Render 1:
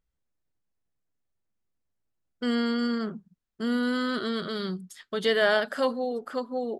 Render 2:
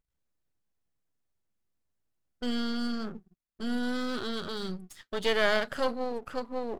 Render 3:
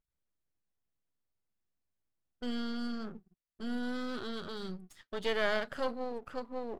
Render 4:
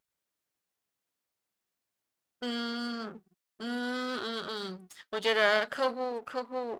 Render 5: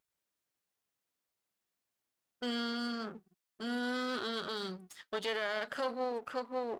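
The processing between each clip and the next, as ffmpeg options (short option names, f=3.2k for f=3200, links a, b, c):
-af "aeval=exprs='if(lt(val(0),0),0.251*val(0),val(0))':c=same"
-af "highshelf=f=4.5k:g=-5.5,volume=-5dB"
-af "highpass=f=470:p=1,volume=7.5dB"
-af "alimiter=limit=-23dB:level=0:latency=1:release=73,volume=-1.5dB"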